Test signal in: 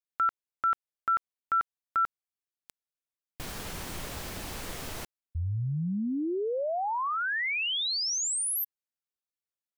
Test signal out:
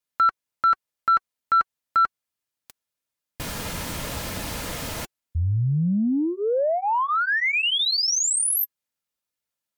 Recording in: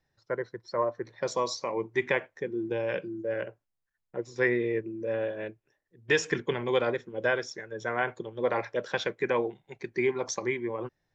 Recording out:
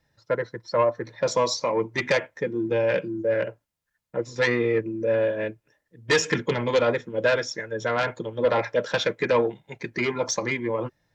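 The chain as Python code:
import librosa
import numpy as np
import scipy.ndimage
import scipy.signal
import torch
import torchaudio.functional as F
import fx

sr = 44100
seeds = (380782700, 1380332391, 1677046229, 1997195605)

y = fx.fold_sine(x, sr, drive_db=7, ceiling_db=-11.0)
y = fx.notch_comb(y, sr, f0_hz=380.0)
y = F.gain(torch.from_numpy(y), -2.0).numpy()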